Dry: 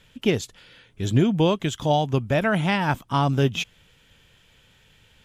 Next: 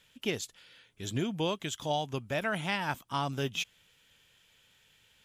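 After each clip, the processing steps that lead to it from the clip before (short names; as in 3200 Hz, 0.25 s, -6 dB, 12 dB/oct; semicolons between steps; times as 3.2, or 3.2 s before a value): tilt +2 dB/oct; gain -9 dB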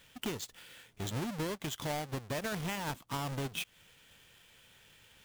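half-waves squared off; compressor 4:1, threshold -36 dBFS, peak gain reduction 11.5 dB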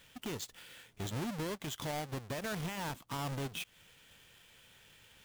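limiter -33 dBFS, peak gain reduction 8 dB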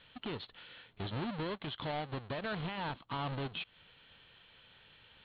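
rippled Chebyshev low-pass 4300 Hz, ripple 3 dB; gain +2.5 dB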